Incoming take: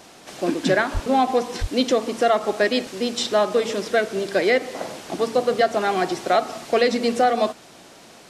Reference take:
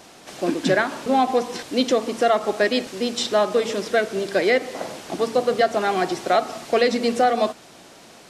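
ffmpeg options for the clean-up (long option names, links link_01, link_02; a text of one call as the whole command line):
ffmpeg -i in.wav -filter_complex "[0:a]asplit=3[link_01][link_02][link_03];[link_01]afade=type=out:start_time=0.93:duration=0.02[link_04];[link_02]highpass=frequency=140:width=0.5412,highpass=frequency=140:width=1.3066,afade=type=in:start_time=0.93:duration=0.02,afade=type=out:start_time=1.05:duration=0.02[link_05];[link_03]afade=type=in:start_time=1.05:duration=0.02[link_06];[link_04][link_05][link_06]amix=inputs=3:normalize=0,asplit=3[link_07][link_08][link_09];[link_07]afade=type=out:start_time=1.6:duration=0.02[link_10];[link_08]highpass=frequency=140:width=0.5412,highpass=frequency=140:width=1.3066,afade=type=in:start_time=1.6:duration=0.02,afade=type=out:start_time=1.72:duration=0.02[link_11];[link_09]afade=type=in:start_time=1.72:duration=0.02[link_12];[link_10][link_11][link_12]amix=inputs=3:normalize=0" out.wav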